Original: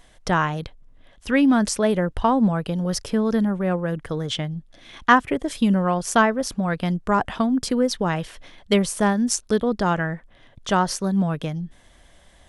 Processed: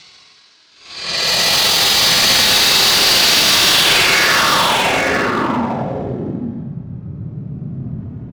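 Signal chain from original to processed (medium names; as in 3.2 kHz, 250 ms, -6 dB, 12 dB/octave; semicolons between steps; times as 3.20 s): local Wiener filter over 41 samples; peaking EQ 1.5 kHz +10 dB 0.61 oct; in parallel at +1 dB: compression 12:1, threshold -24 dBFS, peak gain reduction 20 dB; on the sum: static phaser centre 1.6 kHz, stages 6; noise-vocoded speech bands 1; Paulstretch 38×, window 0.05 s, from 5.57 s; low-pass sweep 4.5 kHz -> 140 Hz, 5.52–8.99 s; hard clipper -17 dBFS, distortion -7 dB; tempo 1.5×; on a send: delay 848 ms -4 dB; on the sum: trim +6 dB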